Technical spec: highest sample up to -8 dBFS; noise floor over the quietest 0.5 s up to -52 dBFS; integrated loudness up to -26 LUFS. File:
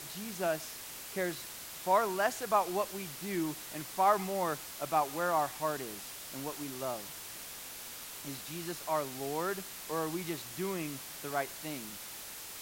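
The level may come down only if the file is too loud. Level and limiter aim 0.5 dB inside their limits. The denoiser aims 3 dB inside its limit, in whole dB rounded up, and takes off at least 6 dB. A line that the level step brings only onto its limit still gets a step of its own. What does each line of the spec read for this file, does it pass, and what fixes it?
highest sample -14.0 dBFS: OK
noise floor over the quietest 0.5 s -46 dBFS: fail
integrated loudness -35.0 LUFS: OK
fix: denoiser 9 dB, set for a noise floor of -46 dBFS

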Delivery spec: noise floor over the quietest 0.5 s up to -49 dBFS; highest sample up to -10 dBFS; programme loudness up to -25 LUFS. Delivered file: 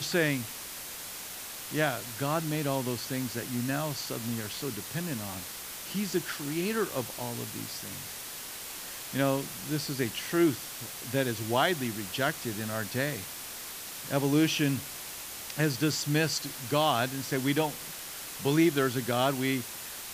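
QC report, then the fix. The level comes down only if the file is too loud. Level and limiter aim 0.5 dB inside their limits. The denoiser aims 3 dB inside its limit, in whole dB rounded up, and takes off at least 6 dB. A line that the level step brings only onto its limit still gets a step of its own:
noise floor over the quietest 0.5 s -41 dBFS: fail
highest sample -11.0 dBFS: OK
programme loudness -31.0 LUFS: OK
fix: denoiser 11 dB, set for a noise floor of -41 dBFS

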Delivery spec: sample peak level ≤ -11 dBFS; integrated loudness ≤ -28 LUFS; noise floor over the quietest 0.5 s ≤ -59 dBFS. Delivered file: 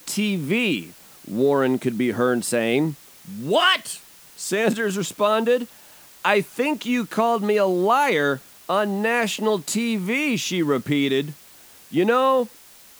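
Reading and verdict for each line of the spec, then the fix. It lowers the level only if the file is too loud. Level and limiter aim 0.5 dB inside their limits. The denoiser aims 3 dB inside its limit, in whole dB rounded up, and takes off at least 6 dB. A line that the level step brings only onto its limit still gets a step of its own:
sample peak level -4.0 dBFS: fail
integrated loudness -21.5 LUFS: fail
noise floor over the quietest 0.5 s -48 dBFS: fail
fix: denoiser 7 dB, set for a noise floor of -48 dBFS; gain -7 dB; limiter -11.5 dBFS

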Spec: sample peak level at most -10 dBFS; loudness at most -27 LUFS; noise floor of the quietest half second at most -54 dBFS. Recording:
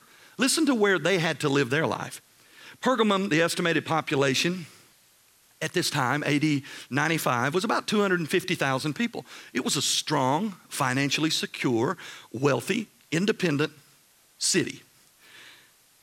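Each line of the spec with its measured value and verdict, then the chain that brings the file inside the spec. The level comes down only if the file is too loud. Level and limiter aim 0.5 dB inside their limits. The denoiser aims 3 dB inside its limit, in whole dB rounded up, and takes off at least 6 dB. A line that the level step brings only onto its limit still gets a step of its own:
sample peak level -8.0 dBFS: fail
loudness -25.5 LUFS: fail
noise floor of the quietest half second -60 dBFS: OK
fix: gain -2 dB; limiter -10.5 dBFS

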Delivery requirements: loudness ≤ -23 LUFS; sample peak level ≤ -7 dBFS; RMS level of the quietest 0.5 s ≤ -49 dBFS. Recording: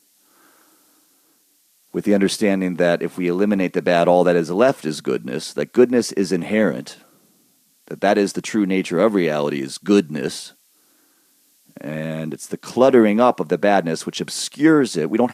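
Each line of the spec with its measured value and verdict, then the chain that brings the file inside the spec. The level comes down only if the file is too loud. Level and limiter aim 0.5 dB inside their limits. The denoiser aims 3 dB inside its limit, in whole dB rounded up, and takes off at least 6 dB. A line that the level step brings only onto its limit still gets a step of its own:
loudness -19.0 LUFS: fail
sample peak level -2.5 dBFS: fail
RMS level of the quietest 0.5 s -60 dBFS: OK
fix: gain -4.5 dB; limiter -7.5 dBFS

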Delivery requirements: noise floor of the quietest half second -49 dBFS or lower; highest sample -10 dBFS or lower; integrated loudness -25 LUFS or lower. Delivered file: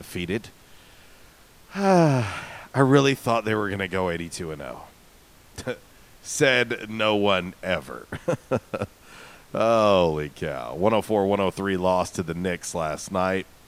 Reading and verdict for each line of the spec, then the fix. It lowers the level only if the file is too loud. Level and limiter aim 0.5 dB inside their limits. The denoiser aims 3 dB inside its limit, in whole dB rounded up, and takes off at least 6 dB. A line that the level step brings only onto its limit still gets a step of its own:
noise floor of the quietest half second -52 dBFS: OK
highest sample -4.0 dBFS: fail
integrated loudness -24.0 LUFS: fail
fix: gain -1.5 dB; limiter -10.5 dBFS

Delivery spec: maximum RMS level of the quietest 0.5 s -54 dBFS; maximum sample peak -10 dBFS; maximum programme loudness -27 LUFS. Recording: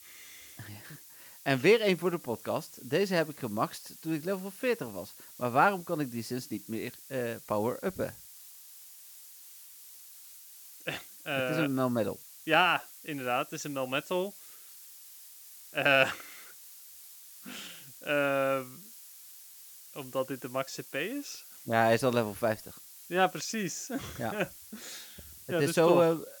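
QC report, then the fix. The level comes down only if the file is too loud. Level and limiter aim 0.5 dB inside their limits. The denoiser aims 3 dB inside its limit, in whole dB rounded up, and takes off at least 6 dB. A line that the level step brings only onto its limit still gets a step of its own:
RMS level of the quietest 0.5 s -52 dBFS: fail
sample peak -7.5 dBFS: fail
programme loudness -30.5 LUFS: OK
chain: denoiser 6 dB, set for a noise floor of -52 dBFS; limiter -10.5 dBFS

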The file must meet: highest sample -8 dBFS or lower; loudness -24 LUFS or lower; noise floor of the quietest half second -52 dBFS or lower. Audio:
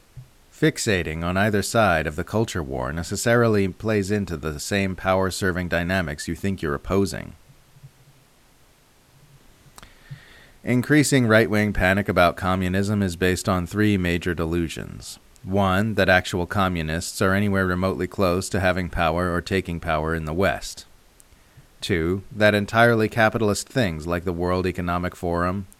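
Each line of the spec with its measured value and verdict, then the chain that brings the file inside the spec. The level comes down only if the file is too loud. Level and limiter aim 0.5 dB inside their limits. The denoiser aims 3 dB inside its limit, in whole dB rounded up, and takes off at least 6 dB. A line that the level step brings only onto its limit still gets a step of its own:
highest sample -3.0 dBFS: fail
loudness -22.0 LUFS: fail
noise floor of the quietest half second -56 dBFS: OK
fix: gain -2.5 dB; limiter -8.5 dBFS

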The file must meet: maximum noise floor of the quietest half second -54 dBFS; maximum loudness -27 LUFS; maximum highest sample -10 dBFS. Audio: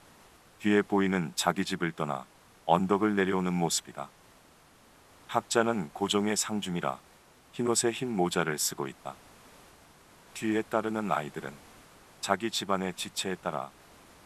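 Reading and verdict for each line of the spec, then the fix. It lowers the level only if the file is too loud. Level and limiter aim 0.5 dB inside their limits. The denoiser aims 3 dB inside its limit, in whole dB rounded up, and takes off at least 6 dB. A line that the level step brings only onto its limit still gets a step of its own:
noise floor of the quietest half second -59 dBFS: OK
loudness -30.0 LUFS: OK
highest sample -8.5 dBFS: fail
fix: limiter -10.5 dBFS

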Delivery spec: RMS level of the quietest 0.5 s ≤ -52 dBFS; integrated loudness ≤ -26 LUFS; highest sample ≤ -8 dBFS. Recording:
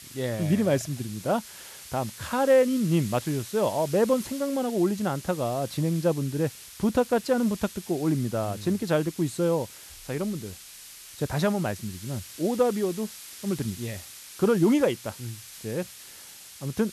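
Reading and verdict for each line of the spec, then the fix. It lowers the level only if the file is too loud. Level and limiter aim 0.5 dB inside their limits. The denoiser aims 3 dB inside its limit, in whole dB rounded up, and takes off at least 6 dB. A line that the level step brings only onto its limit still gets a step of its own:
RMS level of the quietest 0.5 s -46 dBFS: fail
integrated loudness -27.0 LUFS: OK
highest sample -11.0 dBFS: OK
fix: denoiser 9 dB, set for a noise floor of -46 dBFS

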